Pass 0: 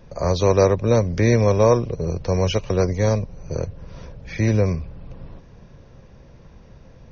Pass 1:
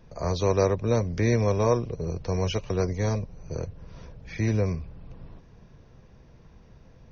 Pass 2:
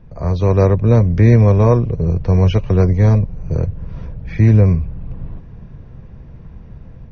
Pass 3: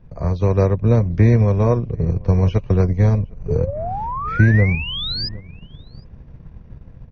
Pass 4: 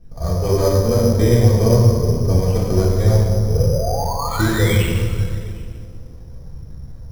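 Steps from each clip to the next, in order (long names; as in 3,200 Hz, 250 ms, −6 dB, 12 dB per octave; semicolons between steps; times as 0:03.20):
notch filter 550 Hz, Q 12; level −6 dB
bass and treble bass +9 dB, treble −15 dB; automatic gain control gain up to 5.5 dB; level +2.5 dB
sound drawn into the spectrogram rise, 0:03.48–0:05.29, 410–5,100 Hz −21 dBFS; slap from a distant wall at 130 metres, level −20 dB; transient designer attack +5 dB, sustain −6 dB; level −4.5 dB
flanger 0.6 Hz, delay 0.3 ms, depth 4 ms, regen +35%; convolution reverb RT60 2.2 s, pre-delay 3 ms, DRR −6 dB; bad sample-rate conversion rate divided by 8×, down filtered, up hold; level −1.5 dB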